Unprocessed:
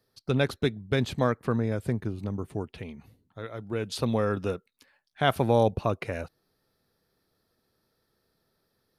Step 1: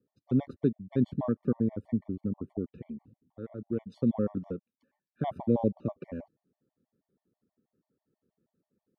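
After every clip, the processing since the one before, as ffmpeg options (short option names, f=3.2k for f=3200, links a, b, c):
-af "bandpass=f=230:t=q:w=1.6:csg=0,afftfilt=real='re*gt(sin(2*PI*6.2*pts/sr)*(1-2*mod(floor(b*sr/1024/590),2)),0)':imag='im*gt(sin(2*PI*6.2*pts/sr)*(1-2*mod(floor(b*sr/1024/590),2)),0)':win_size=1024:overlap=0.75,volume=5.5dB"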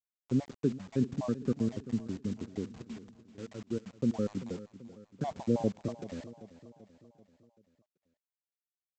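-af "aresample=16000,acrusher=bits=7:mix=0:aa=0.000001,aresample=44100,aecho=1:1:387|774|1161|1548|1935:0.168|0.089|0.0472|0.025|0.0132,volume=-3dB"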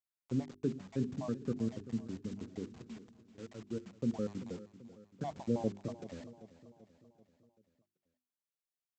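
-af "bandreject=f=50:t=h:w=6,bandreject=f=100:t=h:w=6,bandreject=f=150:t=h:w=6,bandreject=f=200:t=h:w=6,bandreject=f=250:t=h:w=6,bandreject=f=300:t=h:w=6,bandreject=f=350:t=h:w=6,bandreject=f=400:t=h:w=6,volume=-4dB"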